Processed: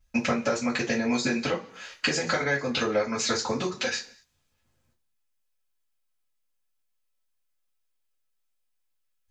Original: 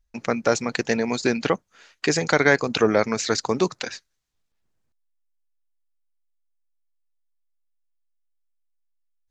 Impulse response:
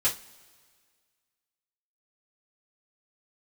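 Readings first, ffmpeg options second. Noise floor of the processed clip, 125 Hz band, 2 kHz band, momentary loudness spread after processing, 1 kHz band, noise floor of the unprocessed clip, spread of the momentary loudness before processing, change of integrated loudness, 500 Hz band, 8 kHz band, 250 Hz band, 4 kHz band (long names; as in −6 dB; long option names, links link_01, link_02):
−74 dBFS, −5.5 dB, −4.0 dB, 5 LU, −5.0 dB, −74 dBFS, 9 LU, −4.5 dB, −6.5 dB, −2.5 dB, −3.0 dB, −0.5 dB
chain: -filter_complex "[0:a]acompressor=threshold=-30dB:ratio=12[link_01];[1:a]atrim=start_sample=2205,afade=type=out:start_time=0.32:duration=0.01,atrim=end_sample=14553[link_02];[link_01][link_02]afir=irnorm=-1:irlink=0"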